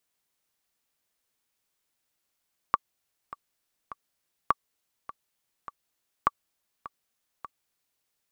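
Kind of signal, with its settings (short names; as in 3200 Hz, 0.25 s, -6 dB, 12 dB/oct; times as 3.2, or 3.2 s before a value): metronome 102 bpm, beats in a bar 3, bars 3, 1150 Hz, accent 17.5 dB -7.5 dBFS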